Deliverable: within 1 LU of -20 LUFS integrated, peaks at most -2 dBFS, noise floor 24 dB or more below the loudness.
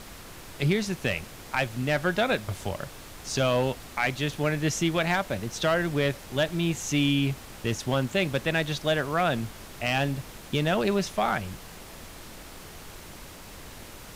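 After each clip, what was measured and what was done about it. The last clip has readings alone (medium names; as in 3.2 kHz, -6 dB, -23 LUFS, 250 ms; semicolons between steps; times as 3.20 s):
clipped samples 0.3%; clipping level -16.0 dBFS; noise floor -45 dBFS; noise floor target -52 dBFS; loudness -27.5 LUFS; peak level -16.0 dBFS; loudness target -20.0 LUFS
-> clip repair -16 dBFS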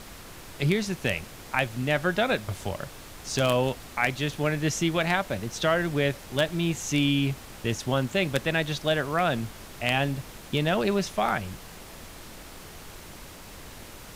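clipped samples 0.0%; noise floor -45 dBFS; noise floor target -51 dBFS
-> noise print and reduce 6 dB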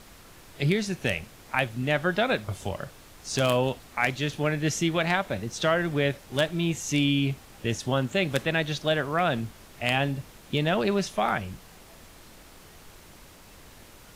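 noise floor -51 dBFS; loudness -27.0 LUFS; peak level -7.0 dBFS; loudness target -20.0 LUFS
-> trim +7 dB; peak limiter -2 dBFS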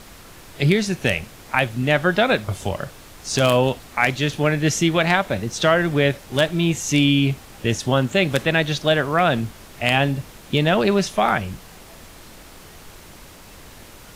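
loudness -20.0 LUFS; peak level -2.0 dBFS; noise floor -44 dBFS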